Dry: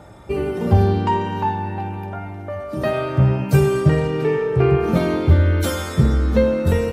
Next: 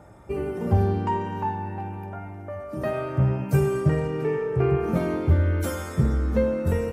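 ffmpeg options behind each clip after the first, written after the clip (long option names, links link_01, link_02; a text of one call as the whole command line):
ffmpeg -i in.wav -af "equalizer=frequency=3800:width_type=o:width=0.85:gain=-9.5,volume=-6dB" out.wav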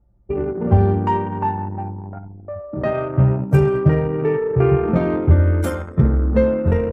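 ffmpeg -i in.wav -af "anlmdn=39.8,volume=6.5dB" out.wav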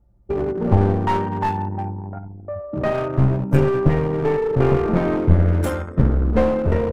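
ffmpeg -i in.wav -af "aeval=exprs='clip(val(0),-1,0.0891)':channel_layout=same,volume=1dB" out.wav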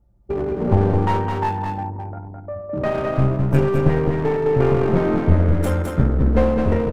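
ffmpeg -i in.wav -af "aecho=1:1:211:0.631,volume=-1dB" out.wav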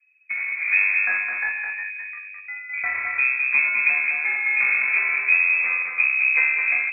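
ffmpeg -i in.wav -af "lowpass=frequency=2200:width_type=q:width=0.5098,lowpass=frequency=2200:width_type=q:width=0.6013,lowpass=frequency=2200:width_type=q:width=0.9,lowpass=frequency=2200:width_type=q:width=2.563,afreqshift=-2600,volume=-4dB" out.wav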